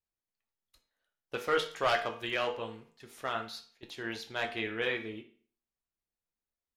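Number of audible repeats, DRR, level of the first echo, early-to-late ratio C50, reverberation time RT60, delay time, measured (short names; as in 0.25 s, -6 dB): none, 3.5 dB, none, 11.0 dB, 0.45 s, none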